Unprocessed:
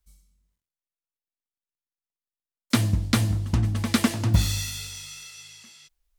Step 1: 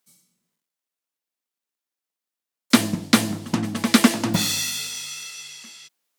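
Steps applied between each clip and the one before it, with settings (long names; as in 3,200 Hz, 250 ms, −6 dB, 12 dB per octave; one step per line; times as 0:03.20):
high-pass filter 180 Hz 24 dB per octave
level +7 dB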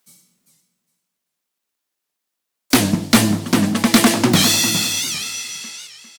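gain into a clipping stage and back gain 15.5 dB
repeating echo 402 ms, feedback 18%, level −9 dB
wow of a warped record 78 rpm, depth 160 cents
level +8 dB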